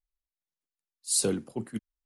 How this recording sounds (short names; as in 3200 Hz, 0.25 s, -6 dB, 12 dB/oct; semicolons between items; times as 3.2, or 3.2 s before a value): noise floor -94 dBFS; spectral tilt -3.0 dB/oct